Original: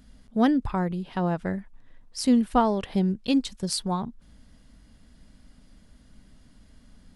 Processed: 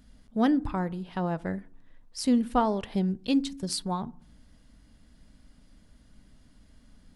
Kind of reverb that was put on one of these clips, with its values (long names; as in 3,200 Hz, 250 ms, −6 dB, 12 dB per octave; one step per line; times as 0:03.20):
feedback delay network reverb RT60 0.53 s, low-frequency decay 1.5×, high-frequency decay 0.4×, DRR 18 dB
level −3 dB